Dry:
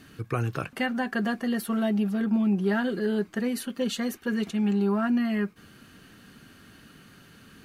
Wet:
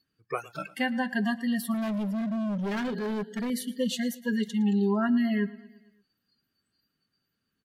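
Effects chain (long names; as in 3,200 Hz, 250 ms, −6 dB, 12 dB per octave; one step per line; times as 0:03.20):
noise reduction from a noise print of the clip's start 30 dB
repeating echo 113 ms, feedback 58%, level −20 dB
0:01.74–0:03.50: hard clipping −28 dBFS, distortion −10 dB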